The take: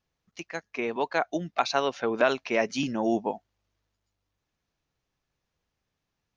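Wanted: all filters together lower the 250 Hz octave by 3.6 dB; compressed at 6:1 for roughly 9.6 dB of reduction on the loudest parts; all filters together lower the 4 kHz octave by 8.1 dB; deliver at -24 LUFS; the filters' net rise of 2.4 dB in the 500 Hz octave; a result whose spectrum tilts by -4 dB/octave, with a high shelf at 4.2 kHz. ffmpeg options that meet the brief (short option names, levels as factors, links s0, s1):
-af "equalizer=f=250:t=o:g=-7,equalizer=f=500:t=o:g=5,equalizer=f=4000:t=o:g=-7.5,highshelf=f=4200:g=-6,acompressor=threshold=0.0501:ratio=6,volume=2.82"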